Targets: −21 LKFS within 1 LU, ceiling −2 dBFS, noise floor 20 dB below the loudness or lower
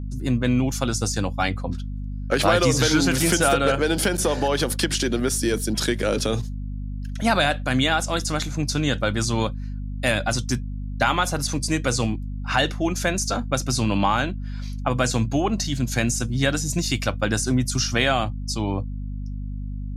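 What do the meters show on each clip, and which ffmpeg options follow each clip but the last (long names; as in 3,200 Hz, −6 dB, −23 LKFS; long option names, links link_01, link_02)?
mains hum 50 Hz; hum harmonics up to 250 Hz; level of the hum −27 dBFS; integrated loudness −23.0 LKFS; sample peak −5.5 dBFS; target loudness −21.0 LKFS
→ -af "bandreject=frequency=50:width_type=h:width=6,bandreject=frequency=100:width_type=h:width=6,bandreject=frequency=150:width_type=h:width=6,bandreject=frequency=200:width_type=h:width=6,bandreject=frequency=250:width_type=h:width=6"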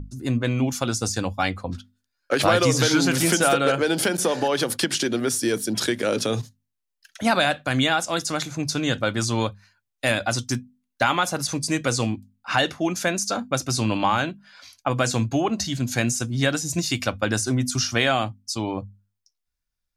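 mains hum none found; integrated loudness −23.0 LKFS; sample peak −6.0 dBFS; target loudness −21.0 LKFS
→ -af "volume=2dB"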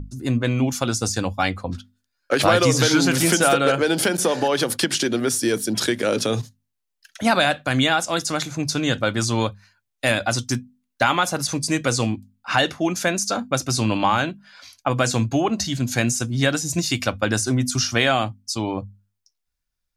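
integrated loudness −21.0 LKFS; sample peak −4.0 dBFS; background noise floor −79 dBFS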